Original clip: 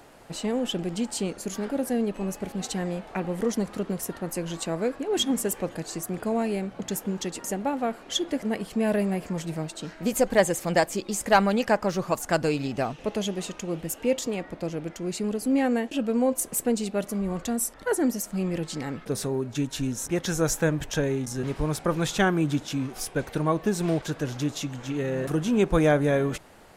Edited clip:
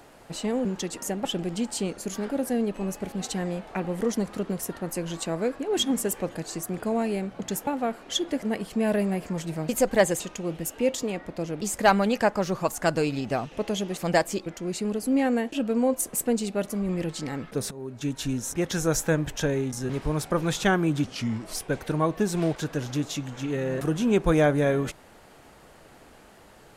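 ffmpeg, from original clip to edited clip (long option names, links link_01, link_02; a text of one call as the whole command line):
ffmpeg -i in.wav -filter_complex "[0:a]asplit=13[link_01][link_02][link_03][link_04][link_05][link_06][link_07][link_08][link_09][link_10][link_11][link_12][link_13];[link_01]atrim=end=0.652[link_14];[link_02]atrim=start=7.068:end=7.672[link_15];[link_03]atrim=start=0.648:end=7.072[link_16];[link_04]atrim=start=7.668:end=9.692[link_17];[link_05]atrim=start=10.078:end=10.592[link_18];[link_06]atrim=start=13.438:end=14.852[link_19];[link_07]atrim=start=11.078:end=13.442[link_20];[link_08]atrim=start=10.588:end=11.082[link_21];[link_09]atrim=start=14.848:end=17.282[link_22];[link_10]atrim=start=18.428:end=19.25,asetpts=PTS-STARTPTS,afade=type=out:start_time=0.818:duration=0.004:curve=hsin:silence=0.141254[link_23];[link_11]atrim=start=19.25:end=22.584,asetpts=PTS-STARTPTS,afade=type=in:duration=0.46:silence=0.141254[link_24];[link_12]atrim=start=22.58:end=23.02,asetpts=PTS-STARTPTS,asetrate=37485,aresample=44100,atrim=end_sample=22828,asetpts=PTS-STARTPTS[link_25];[link_13]atrim=start=23.016[link_26];[link_14][link_15]acrossfade=duration=0.004:curve1=hsin:curve2=hsin[link_27];[link_27][link_16]acrossfade=duration=0.004:curve1=hsin:curve2=hsin[link_28];[link_28][link_17]acrossfade=duration=0.004:curve1=hsin:curve2=hsin[link_29];[link_29][link_18]acrossfade=duration=0.004:curve1=hsin:curve2=hsin[link_30];[link_30][link_19]acrossfade=duration=0.004:curve1=hsin:curve2=hsin[link_31];[link_31][link_20]acrossfade=duration=0.004:curve1=hsin:curve2=hsin[link_32];[link_32][link_21]acrossfade=duration=0.004:curve1=hsin:curve2=hsin[link_33];[link_33][link_22]acrossfade=duration=0.004:curve1=hsin:curve2=hsin[link_34];[link_23][link_24]concat=n=2:v=0:a=1[link_35];[link_34][link_35]acrossfade=duration=0.004:curve1=hsin:curve2=hsin[link_36];[link_36][link_25]acrossfade=duration=0.004:curve1=hsin:curve2=hsin[link_37];[link_37][link_26]acrossfade=duration=0.004:curve1=hsin:curve2=hsin" out.wav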